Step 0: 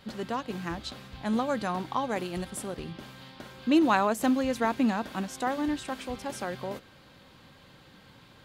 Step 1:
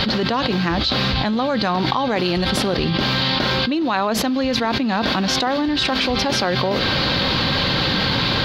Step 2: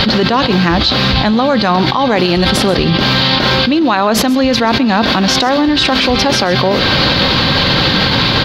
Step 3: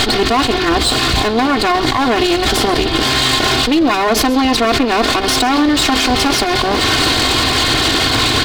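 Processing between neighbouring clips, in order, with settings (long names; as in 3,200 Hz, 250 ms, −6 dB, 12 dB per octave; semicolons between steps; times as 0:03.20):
high shelf with overshoot 6,200 Hz −12 dB, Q 3; envelope flattener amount 100%; level −1.5 dB
single-tap delay 133 ms −18 dB; boost into a limiter +9.5 dB; level −1 dB
lower of the sound and its delayed copy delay 2.8 ms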